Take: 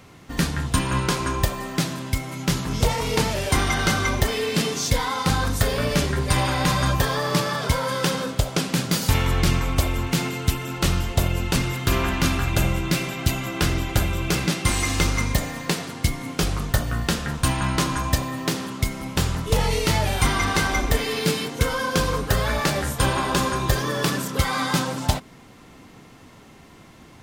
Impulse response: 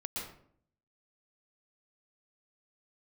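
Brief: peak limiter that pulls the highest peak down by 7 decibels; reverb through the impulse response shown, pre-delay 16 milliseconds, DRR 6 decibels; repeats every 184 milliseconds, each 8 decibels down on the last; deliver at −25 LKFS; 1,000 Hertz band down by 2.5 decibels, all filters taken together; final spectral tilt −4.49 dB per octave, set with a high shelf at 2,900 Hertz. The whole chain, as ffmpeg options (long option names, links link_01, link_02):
-filter_complex "[0:a]equalizer=frequency=1000:width_type=o:gain=-3.5,highshelf=frequency=2900:gain=3.5,alimiter=limit=-11.5dB:level=0:latency=1,aecho=1:1:184|368|552|736|920:0.398|0.159|0.0637|0.0255|0.0102,asplit=2[link_01][link_02];[1:a]atrim=start_sample=2205,adelay=16[link_03];[link_02][link_03]afir=irnorm=-1:irlink=0,volume=-7.5dB[link_04];[link_01][link_04]amix=inputs=2:normalize=0,volume=-3dB"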